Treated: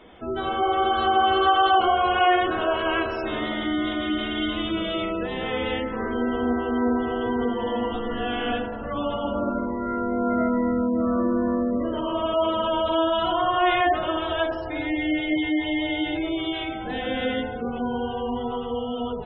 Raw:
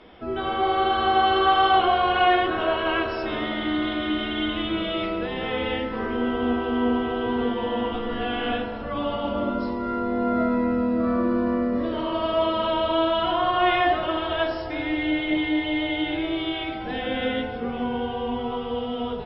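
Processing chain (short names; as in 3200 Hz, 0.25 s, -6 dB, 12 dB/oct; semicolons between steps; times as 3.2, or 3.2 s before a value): spectral gate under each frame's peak -25 dB strong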